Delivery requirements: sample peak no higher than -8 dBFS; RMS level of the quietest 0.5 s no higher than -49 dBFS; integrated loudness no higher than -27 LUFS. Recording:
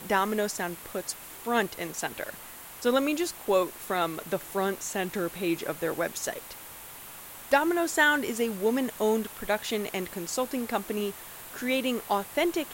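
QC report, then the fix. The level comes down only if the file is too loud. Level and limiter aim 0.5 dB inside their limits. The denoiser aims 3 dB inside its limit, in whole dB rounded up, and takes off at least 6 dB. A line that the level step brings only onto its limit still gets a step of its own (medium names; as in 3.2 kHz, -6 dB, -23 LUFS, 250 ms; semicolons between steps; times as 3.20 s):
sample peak -8.5 dBFS: pass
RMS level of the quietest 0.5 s -45 dBFS: fail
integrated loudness -29.0 LUFS: pass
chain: noise reduction 7 dB, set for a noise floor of -45 dBFS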